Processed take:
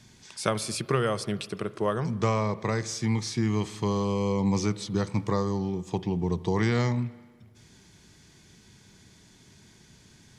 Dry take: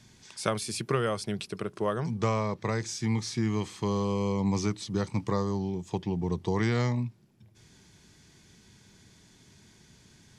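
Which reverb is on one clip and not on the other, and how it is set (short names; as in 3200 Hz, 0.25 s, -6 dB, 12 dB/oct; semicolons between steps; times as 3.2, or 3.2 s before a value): spring tank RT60 1.5 s, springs 38/46 ms, chirp 55 ms, DRR 16.5 dB; gain +2 dB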